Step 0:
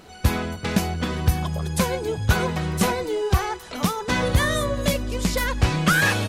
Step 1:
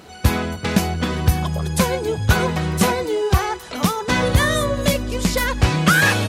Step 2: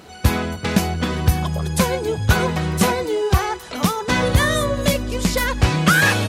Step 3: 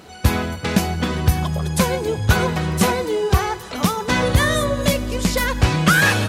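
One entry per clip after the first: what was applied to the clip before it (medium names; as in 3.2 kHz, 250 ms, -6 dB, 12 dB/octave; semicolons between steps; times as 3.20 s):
high-pass 50 Hz; trim +4 dB
no audible change
reverberation RT60 2.4 s, pre-delay 67 ms, DRR 17 dB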